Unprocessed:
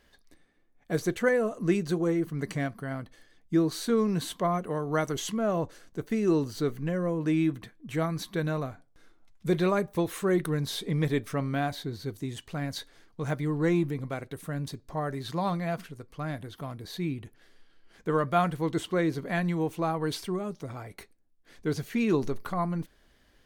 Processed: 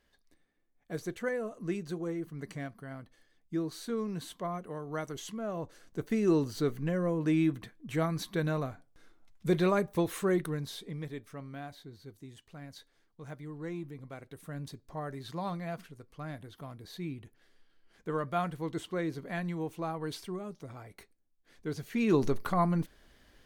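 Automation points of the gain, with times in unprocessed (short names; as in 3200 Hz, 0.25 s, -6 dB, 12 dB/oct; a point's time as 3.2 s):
5.56 s -9 dB
5.99 s -1.5 dB
10.22 s -1.5 dB
11.11 s -14 dB
13.79 s -14 dB
14.57 s -7 dB
21.77 s -7 dB
22.26 s +2 dB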